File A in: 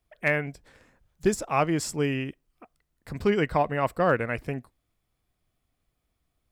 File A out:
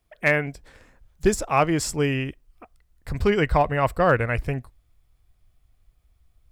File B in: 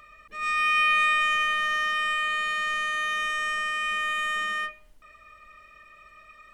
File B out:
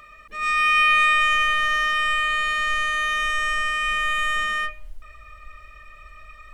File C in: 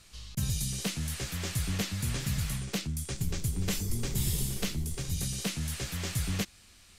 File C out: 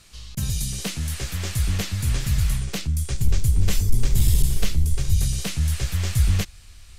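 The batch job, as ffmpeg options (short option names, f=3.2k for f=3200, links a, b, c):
-af "asubboost=boost=6.5:cutoff=86,asoftclip=type=hard:threshold=-13dB,volume=4.5dB"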